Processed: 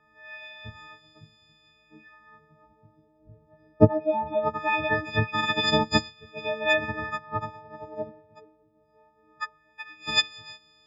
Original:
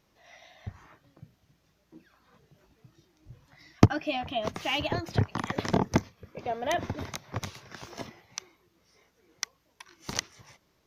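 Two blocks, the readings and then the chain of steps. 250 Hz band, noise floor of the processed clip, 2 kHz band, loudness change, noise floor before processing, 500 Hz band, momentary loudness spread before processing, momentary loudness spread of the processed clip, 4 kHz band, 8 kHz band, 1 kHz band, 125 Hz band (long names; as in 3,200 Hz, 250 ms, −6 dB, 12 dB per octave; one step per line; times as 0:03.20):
+1.0 dB, −64 dBFS, +9.5 dB, +5.0 dB, −70 dBFS, +6.5 dB, 20 LU, 21 LU, +8.0 dB, −5.0 dB, +5.0 dB, −1.0 dB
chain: every partial snapped to a pitch grid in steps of 6 semitones
auto-filter low-pass sine 0.21 Hz 560–4,000 Hz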